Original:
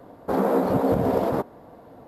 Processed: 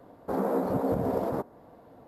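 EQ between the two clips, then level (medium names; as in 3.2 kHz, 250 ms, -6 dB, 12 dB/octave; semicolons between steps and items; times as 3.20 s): dynamic bell 3 kHz, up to -6 dB, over -48 dBFS, Q 0.98; -6.0 dB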